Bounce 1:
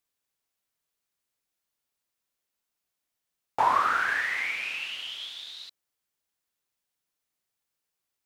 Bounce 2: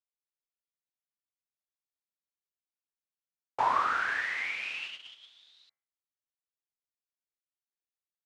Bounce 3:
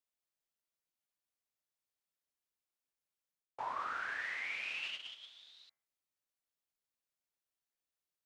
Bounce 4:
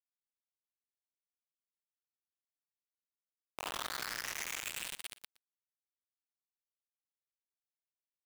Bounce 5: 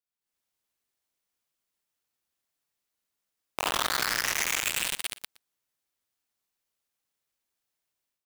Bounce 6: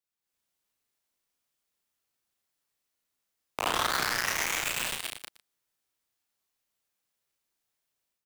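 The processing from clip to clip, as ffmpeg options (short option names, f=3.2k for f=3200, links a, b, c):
-af "lowpass=7.3k,bandreject=f=73.9:t=h:w=4,bandreject=f=147.8:t=h:w=4,bandreject=f=221.7:t=h:w=4,bandreject=f=295.6:t=h:w=4,bandreject=f=369.5:t=h:w=4,bandreject=f=443.4:t=h:w=4,bandreject=f=517.3:t=h:w=4,bandreject=f=591.2:t=h:w=4,bandreject=f=665.1:t=h:w=4,bandreject=f=739:t=h:w=4,bandreject=f=812.9:t=h:w=4,bandreject=f=886.8:t=h:w=4,bandreject=f=960.7:t=h:w=4,bandreject=f=1.0346k:t=h:w=4,bandreject=f=1.1085k:t=h:w=4,bandreject=f=1.1824k:t=h:w=4,bandreject=f=1.2563k:t=h:w=4,bandreject=f=1.3302k:t=h:w=4,bandreject=f=1.4041k:t=h:w=4,bandreject=f=1.478k:t=h:w=4,bandreject=f=1.5519k:t=h:w=4,bandreject=f=1.6258k:t=h:w=4,bandreject=f=1.6997k:t=h:w=4,bandreject=f=1.7736k:t=h:w=4,bandreject=f=1.8475k:t=h:w=4,bandreject=f=1.9214k:t=h:w=4,bandreject=f=1.9953k:t=h:w=4,bandreject=f=2.0692k:t=h:w=4,bandreject=f=2.1431k:t=h:w=4,bandreject=f=2.217k:t=h:w=4,bandreject=f=2.2909k:t=h:w=4,bandreject=f=2.3648k:t=h:w=4,agate=range=-15dB:threshold=-35dB:ratio=16:detection=peak,volume=-3.5dB"
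-af "equalizer=f=600:t=o:w=0.41:g=2.5,areverse,acompressor=threshold=-39dB:ratio=6,areverse,volume=1dB"
-af "alimiter=level_in=16dB:limit=-24dB:level=0:latency=1:release=89,volume=-16dB,acrusher=bits=6:mix=0:aa=0.000001,aecho=1:1:118:0.106,volume=9dB"
-af "dynaudnorm=f=180:g=3:m=12dB"
-filter_complex "[0:a]acrossover=split=350|1500[a][b][c];[c]asoftclip=type=tanh:threshold=-21.5dB[d];[a][b][d]amix=inputs=3:normalize=0,asplit=2[e][f];[f]adelay=34,volume=-4.5dB[g];[e][g]amix=inputs=2:normalize=0"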